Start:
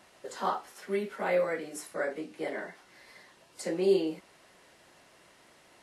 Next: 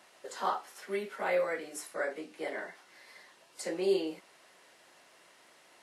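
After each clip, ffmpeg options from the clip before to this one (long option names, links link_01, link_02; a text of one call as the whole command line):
ffmpeg -i in.wav -af "highpass=frequency=450:poles=1" out.wav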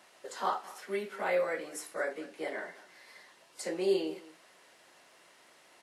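ffmpeg -i in.wav -filter_complex "[0:a]asplit=2[link_01][link_02];[link_02]adelay=209.9,volume=-18dB,highshelf=frequency=4000:gain=-4.72[link_03];[link_01][link_03]amix=inputs=2:normalize=0" out.wav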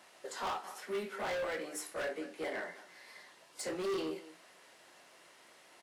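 ffmpeg -i in.wav -filter_complex "[0:a]asoftclip=type=hard:threshold=-34dB,asplit=2[link_01][link_02];[link_02]adelay=23,volume=-11.5dB[link_03];[link_01][link_03]amix=inputs=2:normalize=0" out.wav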